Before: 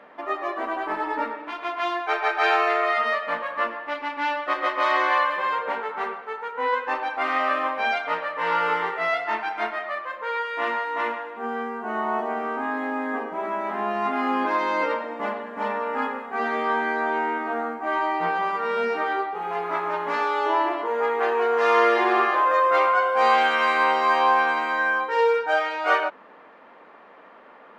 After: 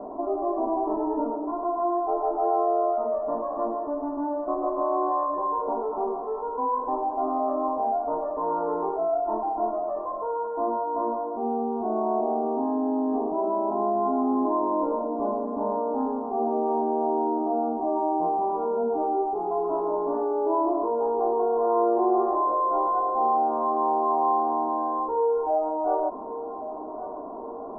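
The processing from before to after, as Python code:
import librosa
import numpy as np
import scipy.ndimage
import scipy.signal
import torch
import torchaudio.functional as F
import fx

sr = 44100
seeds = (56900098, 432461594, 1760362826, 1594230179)

y = scipy.signal.sosfilt(scipy.signal.butter(8, 970.0, 'lowpass', fs=sr, output='sos'), x)
y = fx.low_shelf(y, sr, hz=220.0, db=10.5)
y = y + 0.69 * np.pad(y, (int(2.9 * sr / 1000.0), 0))[:len(y)]
y = fx.echo_feedback(y, sr, ms=1123, feedback_pct=40, wet_db=-23.0)
y = fx.env_flatten(y, sr, amount_pct=50)
y = y * 10.0 ** (-5.5 / 20.0)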